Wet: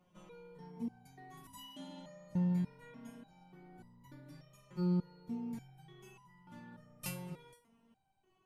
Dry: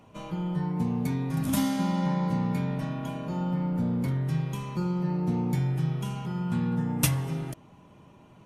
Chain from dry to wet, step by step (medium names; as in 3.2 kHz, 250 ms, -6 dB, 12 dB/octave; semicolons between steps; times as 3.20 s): resonator arpeggio 3.4 Hz 180–990 Hz; trim -1 dB